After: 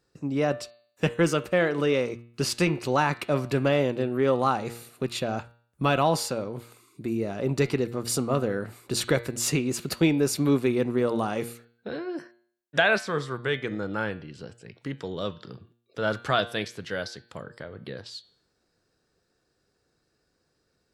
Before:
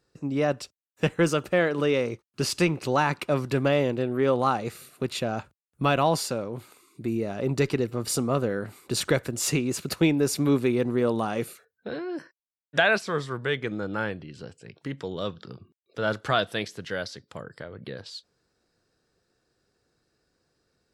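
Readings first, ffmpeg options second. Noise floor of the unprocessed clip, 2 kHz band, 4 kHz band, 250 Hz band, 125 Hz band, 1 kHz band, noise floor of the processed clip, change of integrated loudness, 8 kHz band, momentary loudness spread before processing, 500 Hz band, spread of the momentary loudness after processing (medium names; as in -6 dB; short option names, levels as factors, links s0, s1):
under -85 dBFS, 0.0 dB, 0.0 dB, 0.0 dB, -0.5 dB, 0.0 dB, -74 dBFS, 0.0 dB, 0.0 dB, 16 LU, 0.0 dB, 16 LU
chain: -af "bandreject=f=117.8:t=h:w=4,bandreject=f=235.6:t=h:w=4,bandreject=f=353.4:t=h:w=4,bandreject=f=471.2:t=h:w=4,bandreject=f=589:t=h:w=4,bandreject=f=706.8:t=h:w=4,bandreject=f=824.6:t=h:w=4,bandreject=f=942.4:t=h:w=4,bandreject=f=1060.2:t=h:w=4,bandreject=f=1178:t=h:w=4,bandreject=f=1295.8:t=h:w=4,bandreject=f=1413.6:t=h:w=4,bandreject=f=1531.4:t=h:w=4,bandreject=f=1649.2:t=h:w=4,bandreject=f=1767:t=h:w=4,bandreject=f=1884.8:t=h:w=4,bandreject=f=2002.6:t=h:w=4,bandreject=f=2120.4:t=h:w=4,bandreject=f=2238.2:t=h:w=4,bandreject=f=2356:t=h:w=4,bandreject=f=2473.8:t=h:w=4,bandreject=f=2591.6:t=h:w=4,bandreject=f=2709.4:t=h:w=4,bandreject=f=2827.2:t=h:w=4,bandreject=f=2945:t=h:w=4,bandreject=f=3062.8:t=h:w=4,bandreject=f=3180.6:t=h:w=4,bandreject=f=3298.4:t=h:w=4,bandreject=f=3416.2:t=h:w=4,bandreject=f=3534:t=h:w=4,bandreject=f=3651.8:t=h:w=4,bandreject=f=3769.6:t=h:w=4,bandreject=f=3887.4:t=h:w=4,bandreject=f=4005.2:t=h:w=4,bandreject=f=4123:t=h:w=4,bandreject=f=4240.8:t=h:w=4,bandreject=f=4358.6:t=h:w=4,bandreject=f=4476.4:t=h:w=4,bandreject=f=4594.2:t=h:w=4"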